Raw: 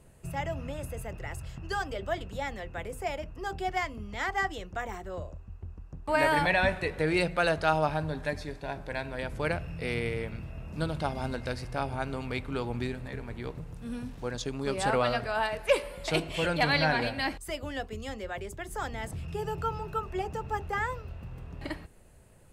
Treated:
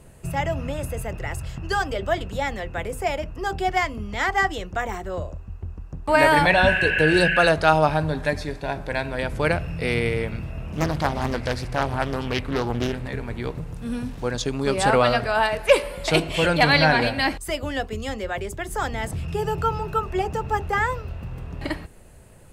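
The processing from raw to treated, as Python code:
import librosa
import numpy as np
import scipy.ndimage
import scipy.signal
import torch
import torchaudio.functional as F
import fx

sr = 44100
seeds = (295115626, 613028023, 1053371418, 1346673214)

y = fx.spec_repair(x, sr, seeds[0], start_s=6.57, length_s=0.87, low_hz=1500.0, high_hz=3200.0, source='after')
y = fx.doppler_dist(y, sr, depth_ms=0.73, at=(10.66, 13.08))
y = y * 10.0 ** (8.5 / 20.0)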